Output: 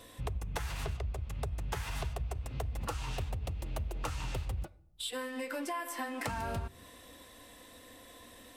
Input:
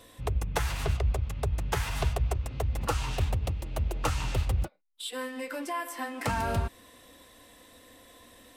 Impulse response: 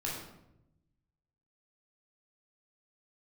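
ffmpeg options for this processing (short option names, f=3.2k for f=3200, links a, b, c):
-filter_complex "[0:a]acompressor=threshold=-34dB:ratio=6,asplit=2[a][b];[1:a]atrim=start_sample=2205[c];[b][c]afir=irnorm=-1:irlink=0,volume=-24dB[d];[a][d]amix=inputs=2:normalize=0"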